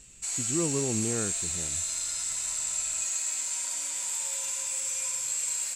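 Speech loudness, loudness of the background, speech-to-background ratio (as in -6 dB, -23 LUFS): -33.5 LUFS, -28.5 LUFS, -5.0 dB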